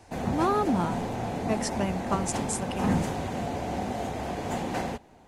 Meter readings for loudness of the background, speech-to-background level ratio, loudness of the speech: -31.5 LUFS, 1.0 dB, -30.5 LUFS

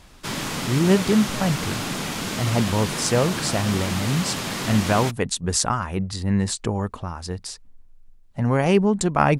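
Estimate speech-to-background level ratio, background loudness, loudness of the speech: 4.5 dB, -27.5 LUFS, -23.0 LUFS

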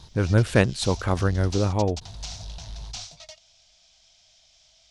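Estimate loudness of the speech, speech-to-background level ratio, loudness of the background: -23.5 LUFS, 15.0 dB, -38.5 LUFS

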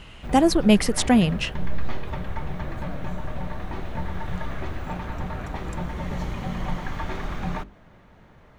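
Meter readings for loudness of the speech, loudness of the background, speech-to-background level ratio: -20.0 LUFS, -33.0 LUFS, 13.0 dB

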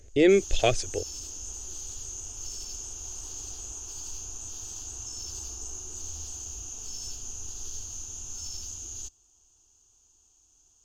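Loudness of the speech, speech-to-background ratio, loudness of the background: -24.5 LUFS, 12.5 dB, -37.0 LUFS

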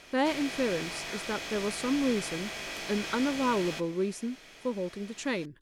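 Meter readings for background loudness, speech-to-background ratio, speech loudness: -36.5 LUFS, 4.5 dB, -32.0 LUFS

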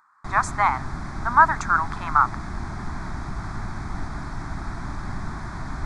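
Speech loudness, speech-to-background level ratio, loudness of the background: -21.5 LUFS, 12.5 dB, -34.0 LUFS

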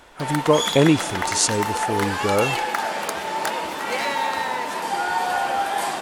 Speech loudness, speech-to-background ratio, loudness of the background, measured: -21.5 LUFS, 3.0 dB, -24.5 LUFS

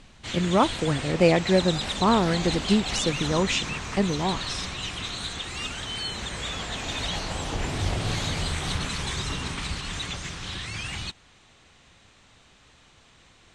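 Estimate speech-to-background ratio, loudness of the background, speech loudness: 6.0 dB, -30.5 LUFS, -24.5 LUFS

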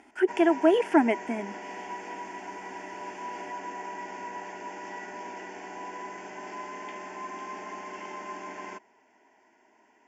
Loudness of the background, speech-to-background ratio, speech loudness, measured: -39.5 LUFS, 15.0 dB, -24.5 LUFS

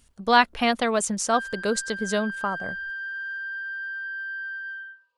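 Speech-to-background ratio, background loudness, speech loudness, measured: 8.5 dB, -32.5 LUFS, -24.0 LUFS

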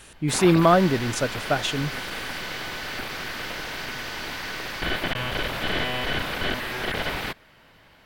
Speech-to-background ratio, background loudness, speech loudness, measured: 8.0 dB, -29.5 LUFS, -21.5 LUFS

